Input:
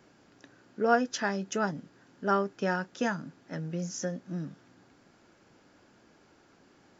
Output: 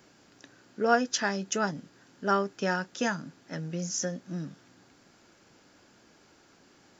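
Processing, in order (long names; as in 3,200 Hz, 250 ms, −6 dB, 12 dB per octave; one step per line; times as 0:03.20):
high-shelf EQ 3,000 Hz +8.5 dB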